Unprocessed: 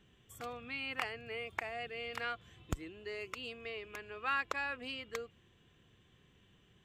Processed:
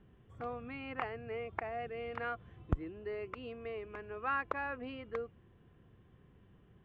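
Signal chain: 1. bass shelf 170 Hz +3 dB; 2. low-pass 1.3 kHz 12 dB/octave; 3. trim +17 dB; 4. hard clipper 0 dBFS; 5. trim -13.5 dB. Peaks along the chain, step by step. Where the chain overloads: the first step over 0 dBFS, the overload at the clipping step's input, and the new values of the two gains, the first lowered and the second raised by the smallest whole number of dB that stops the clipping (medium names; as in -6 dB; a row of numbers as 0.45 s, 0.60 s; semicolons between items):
-19.0 dBFS, -20.5 dBFS, -3.5 dBFS, -3.5 dBFS, -17.0 dBFS; nothing clips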